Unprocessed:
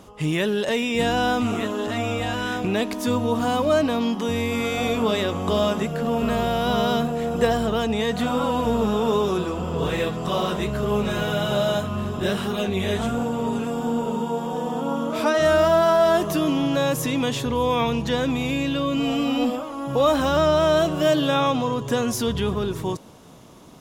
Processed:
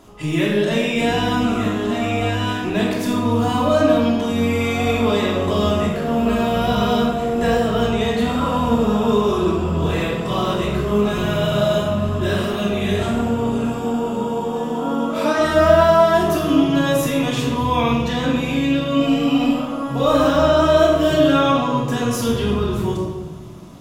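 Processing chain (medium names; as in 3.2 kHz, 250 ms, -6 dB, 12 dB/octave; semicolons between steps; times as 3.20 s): simulated room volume 970 m³, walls mixed, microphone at 3 m; trim -3 dB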